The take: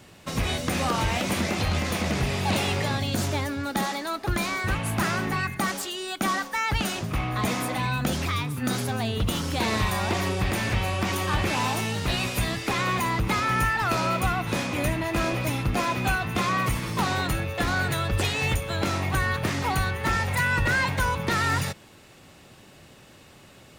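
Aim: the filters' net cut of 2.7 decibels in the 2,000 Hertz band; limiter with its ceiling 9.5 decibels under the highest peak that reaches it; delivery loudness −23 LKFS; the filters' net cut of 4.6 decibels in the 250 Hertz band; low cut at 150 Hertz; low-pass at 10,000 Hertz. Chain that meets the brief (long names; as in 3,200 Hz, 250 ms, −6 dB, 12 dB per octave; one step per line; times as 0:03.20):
high-pass filter 150 Hz
low-pass filter 10,000 Hz
parametric band 250 Hz −5 dB
parametric band 2,000 Hz −3.5 dB
level +9 dB
brickwall limiter −14.5 dBFS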